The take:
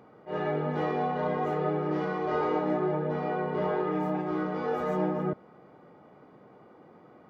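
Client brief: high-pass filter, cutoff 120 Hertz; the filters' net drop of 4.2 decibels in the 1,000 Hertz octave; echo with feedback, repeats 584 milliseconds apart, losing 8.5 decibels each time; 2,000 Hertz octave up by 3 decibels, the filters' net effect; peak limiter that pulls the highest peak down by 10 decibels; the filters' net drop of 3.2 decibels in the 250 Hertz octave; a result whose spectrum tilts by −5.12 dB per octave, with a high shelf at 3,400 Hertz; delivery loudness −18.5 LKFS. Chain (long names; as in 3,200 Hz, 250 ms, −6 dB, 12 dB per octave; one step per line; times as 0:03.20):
high-pass filter 120 Hz
parametric band 250 Hz −4 dB
parametric band 1,000 Hz −7.5 dB
parametric band 2,000 Hz +5.5 dB
high-shelf EQ 3,400 Hz +5 dB
brickwall limiter −29 dBFS
repeating echo 584 ms, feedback 38%, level −8.5 dB
level +19 dB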